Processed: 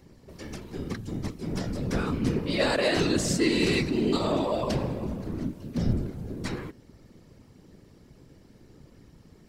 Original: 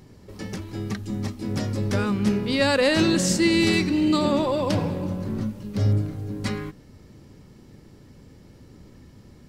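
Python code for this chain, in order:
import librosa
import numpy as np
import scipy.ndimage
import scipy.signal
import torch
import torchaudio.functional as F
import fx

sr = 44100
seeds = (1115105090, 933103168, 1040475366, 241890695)

y = fx.whisperise(x, sr, seeds[0])
y = y * 10.0 ** (-4.5 / 20.0)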